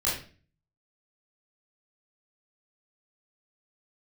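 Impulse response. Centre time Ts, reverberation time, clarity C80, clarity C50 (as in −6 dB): 43 ms, 0.40 s, 9.0 dB, 4.0 dB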